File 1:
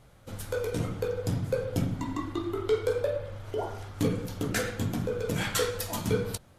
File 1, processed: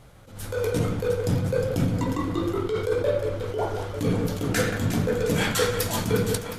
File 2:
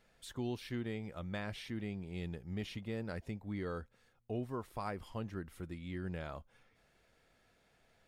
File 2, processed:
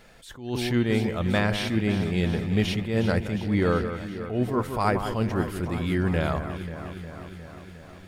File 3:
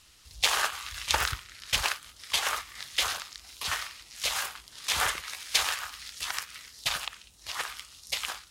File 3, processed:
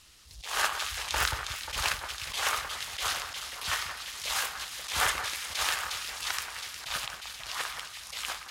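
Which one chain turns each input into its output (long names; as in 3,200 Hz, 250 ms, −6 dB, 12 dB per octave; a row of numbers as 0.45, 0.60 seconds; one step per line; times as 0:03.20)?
delay that swaps between a low-pass and a high-pass 179 ms, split 2,000 Hz, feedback 82%, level −9 dB
level that may rise only so fast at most 100 dB per second
normalise the peak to −9 dBFS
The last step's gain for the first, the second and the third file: +6.0, +17.0, +1.0 decibels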